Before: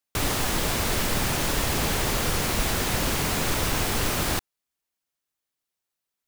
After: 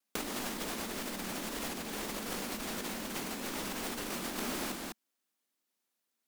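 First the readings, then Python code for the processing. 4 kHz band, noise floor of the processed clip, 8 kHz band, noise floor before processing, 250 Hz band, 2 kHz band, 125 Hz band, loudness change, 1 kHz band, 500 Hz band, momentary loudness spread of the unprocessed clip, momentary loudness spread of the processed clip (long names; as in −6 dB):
−12.0 dB, −84 dBFS, −12.5 dB, −85 dBFS, −8.5 dB, −12.0 dB, −20.5 dB, −12.5 dB, −12.0 dB, −11.0 dB, 1 LU, 2 LU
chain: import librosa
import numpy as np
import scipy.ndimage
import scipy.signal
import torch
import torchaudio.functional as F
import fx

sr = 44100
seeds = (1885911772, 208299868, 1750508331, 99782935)

p1 = fx.low_shelf_res(x, sr, hz=160.0, db=-10.5, q=3.0)
p2 = p1 + fx.echo_multitap(p1, sr, ms=(330, 527), db=(-13.5, -16.5), dry=0)
p3 = fx.over_compress(p2, sr, threshold_db=-30.0, ratio=-0.5)
p4 = fx.wow_flutter(p3, sr, seeds[0], rate_hz=2.1, depth_cents=65.0)
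y = p4 * 10.0 ** (-6.0 / 20.0)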